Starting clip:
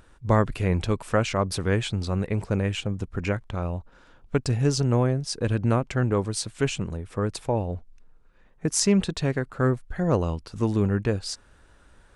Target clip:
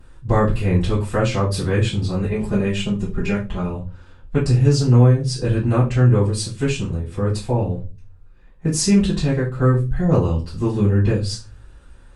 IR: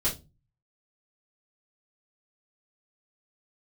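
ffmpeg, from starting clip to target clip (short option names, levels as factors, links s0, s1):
-filter_complex "[0:a]asettb=1/sr,asplit=3[s0][s1][s2];[s0]atrim=end=2.224[s3];[s1]atrim=start=2.22:end=3.7,asetpts=PTS-STARTPTS,afade=t=in:d=0.004:c=qsin,afade=t=out:st=1.476:d=0.004:c=qsin,aecho=1:1:4.9:0.65,atrim=end_sample=65268[s4];[s2]atrim=start=3.696[s5];[s3][s4]acrossfade=d=0.004:c1=hsin:c2=qsin[s6];[s6][s5]acrossfade=d=0.004:c1=qsin:c2=hsin[s7];[1:a]atrim=start_sample=2205,asetrate=36162,aresample=44100[s8];[s7][s8]afir=irnorm=-1:irlink=0,volume=0.473"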